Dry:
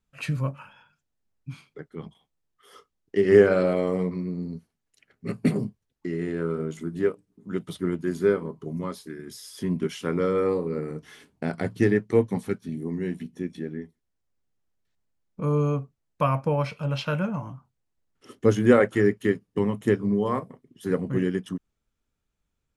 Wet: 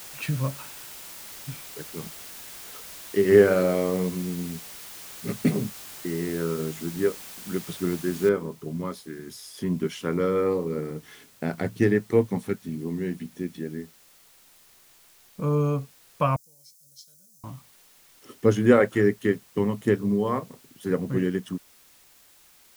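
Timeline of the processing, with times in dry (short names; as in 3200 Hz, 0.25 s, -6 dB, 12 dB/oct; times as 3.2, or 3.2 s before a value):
8.29 noise floor step -42 dB -56 dB
16.36–17.44 inverse Chebyshev high-pass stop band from 2900 Hz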